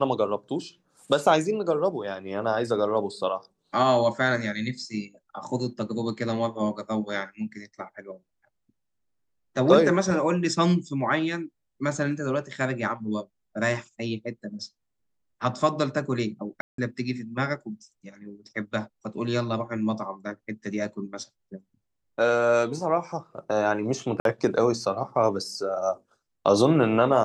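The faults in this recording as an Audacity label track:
16.610000	16.780000	dropout 173 ms
24.200000	24.250000	dropout 52 ms

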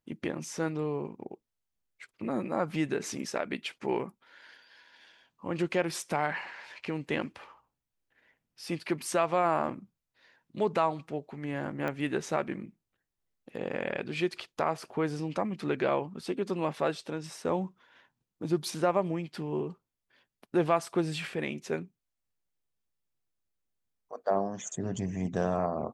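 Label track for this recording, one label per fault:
11.880000	11.880000	pop -21 dBFS

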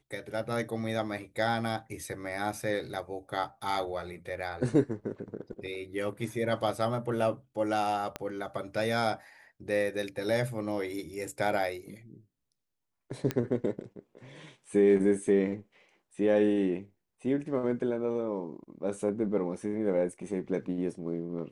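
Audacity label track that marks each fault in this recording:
8.160000	8.160000	pop -19 dBFS
13.310000	13.310000	pop -15 dBFS

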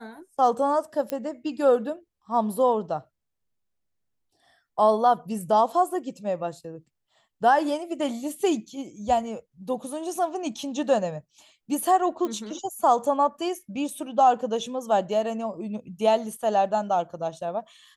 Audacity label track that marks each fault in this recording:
1.100000	1.100000	pop -14 dBFS
12.250000	12.250000	pop -17 dBFS

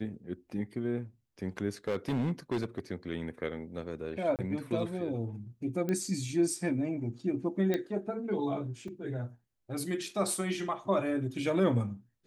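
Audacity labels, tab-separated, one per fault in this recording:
1.880000	2.790000	clipped -26.5 dBFS
4.360000	4.390000	dropout 28 ms
5.890000	5.890000	pop -20 dBFS
7.740000	7.740000	pop -18 dBFS
8.880000	8.880000	dropout 3.4 ms

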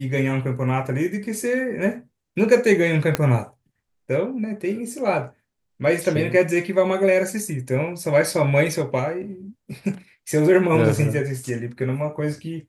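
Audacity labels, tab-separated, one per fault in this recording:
3.150000	3.150000	pop -5 dBFS

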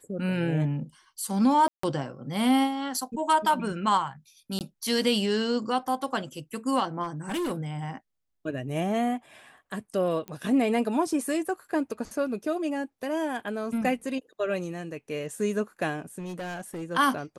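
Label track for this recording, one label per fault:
1.680000	1.830000	dropout 154 ms
4.590000	4.610000	dropout 18 ms
7.030000	7.520000	clipped -26.5 dBFS
10.280000	10.280000	pop -23 dBFS
16.180000	16.830000	clipped -32 dBFS

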